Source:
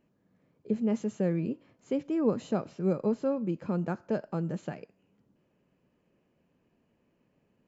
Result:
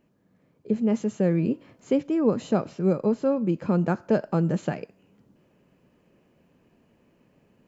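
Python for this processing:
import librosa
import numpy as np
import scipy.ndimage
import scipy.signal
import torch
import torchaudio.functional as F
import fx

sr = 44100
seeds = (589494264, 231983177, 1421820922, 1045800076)

y = fx.rider(x, sr, range_db=4, speed_s=0.5)
y = F.gain(torch.from_numpy(y), 6.5).numpy()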